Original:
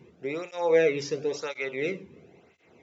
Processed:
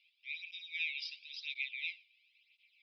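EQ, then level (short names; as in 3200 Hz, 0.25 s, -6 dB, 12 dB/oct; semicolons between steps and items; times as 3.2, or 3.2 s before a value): rippled Chebyshev high-pass 2300 Hz, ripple 3 dB; rippled Chebyshev low-pass 5100 Hz, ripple 3 dB; air absorption 68 m; +6.0 dB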